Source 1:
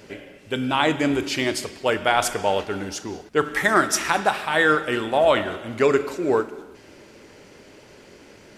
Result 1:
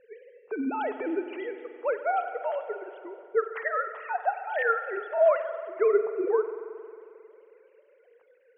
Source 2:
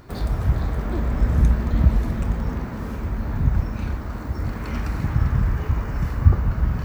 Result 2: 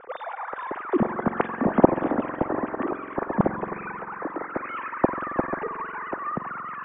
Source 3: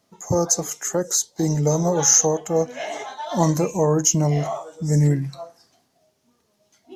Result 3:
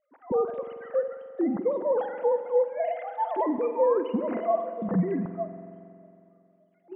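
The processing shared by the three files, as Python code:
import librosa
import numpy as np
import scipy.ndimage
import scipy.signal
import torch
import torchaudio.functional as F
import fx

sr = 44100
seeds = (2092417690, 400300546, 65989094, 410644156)

y = fx.sine_speech(x, sr)
y = scipy.signal.sosfilt(scipy.signal.butter(2, 1800.0, 'lowpass', fs=sr, output='sos'), y)
y = fx.rev_spring(y, sr, rt60_s=2.6, pass_ms=(45,), chirp_ms=60, drr_db=9.5)
y = y * librosa.db_to_amplitude(-6.5)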